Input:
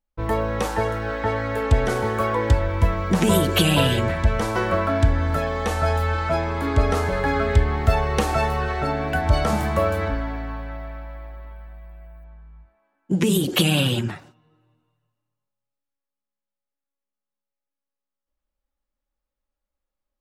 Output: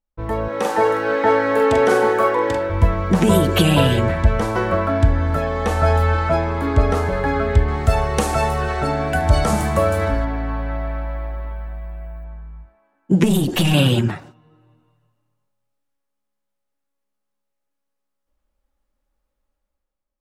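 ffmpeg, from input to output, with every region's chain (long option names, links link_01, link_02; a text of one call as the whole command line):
ffmpeg -i in.wav -filter_complex "[0:a]asettb=1/sr,asplit=3[link_01][link_02][link_03];[link_01]atrim=end=0.484[link_04];[link_02]atrim=start=0.48:end=2.7,asetpts=PTS-STARTPTS,afade=type=in:duration=0.004:curve=qsin,afade=type=out:start_time=2.216:duration=0.004:curve=qsin,highpass=280,asplit=2[link_05][link_06];[link_06]adelay=43,volume=-5dB[link_07];[link_05][link_07]amix=inputs=2:normalize=0,atrim=end_sample=97902[link_08];[link_03]atrim=start=2.696[link_09];[link_04][link_08]acrossfade=duration=0.004:curve1=hsin:curve2=qsin[link_10];[link_10][link_09]acrossfade=duration=0.004:curve1=qsin:curve2=hsin,asettb=1/sr,asplit=3[link_11][link_12][link_13];[link_11]atrim=end=7.684[link_14];[link_12]atrim=start=7.68:end=10.25,asetpts=PTS-STARTPTS,afade=type=in:duration=0.004:curve=qsin,afade=type=out:start_time=2.566:duration=0.004:curve=qsin,equalizer=frequency=8900:width=0.65:gain=11,aecho=1:1:74|148|222|296|370:0.188|0.0998|0.0529|0.028|0.0149,atrim=end_sample=113337[link_15];[link_13]atrim=start=10.246[link_16];[link_14][link_15]acrossfade=duration=0.004:curve1=hsin:curve2=qsin[link_17];[link_17][link_16]acrossfade=duration=0.004:curve1=qsin:curve2=hsin,asettb=1/sr,asplit=3[link_18][link_19][link_20];[link_18]atrim=end=13.244[link_21];[link_19]atrim=start=13.24:end=13.74,asetpts=PTS-STARTPTS,afade=type=in:duration=0.004:curve=qsin,afade=type=out:start_time=0.496:duration=0.004:curve=qsin,aecho=1:1:1.1:0.36,atrim=end_sample=22050,aeval=exprs='(tanh(7.08*val(0)+0.35)-tanh(0.35))/7.08':channel_layout=same[link_22];[link_20]atrim=start=13.736[link_23];[link_21][link_22]acrossfade=duration=0.004:curve1=hsin:curve2=qsin[link_24];[link_24][link_23]acrossfade=duration=0.004:curve1=qsin:curve2=hsin,highshelf=frequency=2600:gain=-9.5,dynaudnorm=framelen=150:gausssize=9:maxgain=11.5dB,equalizer=frequency=10000:width=0.48:gain=4,volume=-1dB" out.wav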